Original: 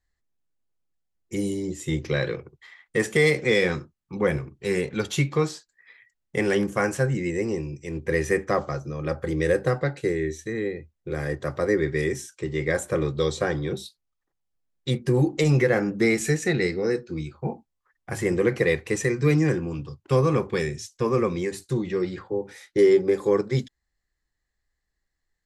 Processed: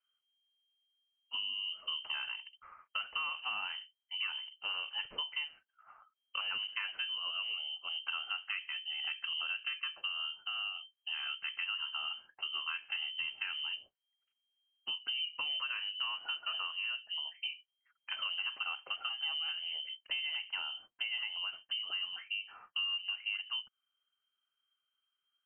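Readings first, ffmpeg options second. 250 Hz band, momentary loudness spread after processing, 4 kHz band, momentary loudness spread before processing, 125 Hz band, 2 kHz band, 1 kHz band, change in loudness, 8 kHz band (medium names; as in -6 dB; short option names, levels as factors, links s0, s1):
under -40 dB, 5 LU, +6.0 dB, 11 LU, under -40 dB, -8.5 dB, -11.5 dB, -11.5 dB, under -40 dB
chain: -af "acompressor=threshold=0.0355:ratio=6,lowpass=f=2700:t=q:w=0.5098,lowpass=f=2700:t=q:w=0.6013,lowpass=f=2700:t=q:w=0.9,lowpass=f=2700:t=q:w=2.563,afreqshift=-3200,volume=0.501"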